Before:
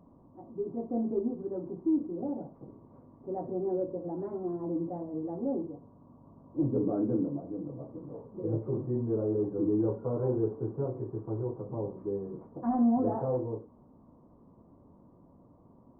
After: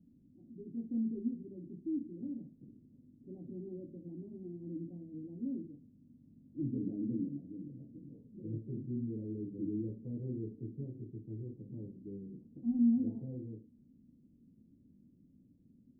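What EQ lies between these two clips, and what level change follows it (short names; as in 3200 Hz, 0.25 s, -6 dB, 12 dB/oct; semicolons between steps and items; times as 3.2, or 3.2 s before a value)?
ladder low-pass 290 Hz, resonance 45%; 0.0 dB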